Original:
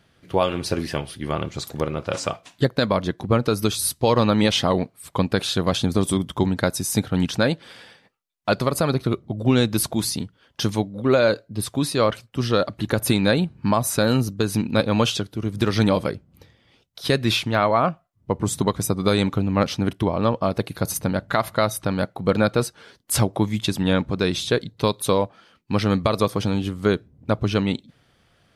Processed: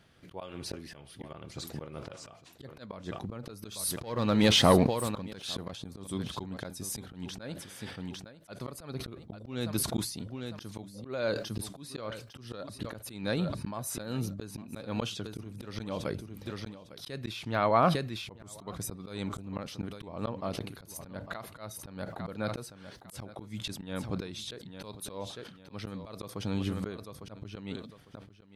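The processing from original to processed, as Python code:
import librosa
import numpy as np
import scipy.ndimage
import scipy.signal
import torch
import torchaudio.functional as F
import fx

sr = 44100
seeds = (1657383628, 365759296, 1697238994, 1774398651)

p1 = x + fx.echo_feedback(x, sr, ms=853, feedback_pct=17, wet_db=-16, dry=0)
p2 = fx.leveller(p1, sr, passes=1, at=(3.71, 5.71))
p3 = fx.auto_swell(p2, sr, attack_ms=658.0)
p4 = fx.sustainer(p3, sr, db_per_s=76.0)
y = p4 * 10.0 ** (-3.0 / 20.0)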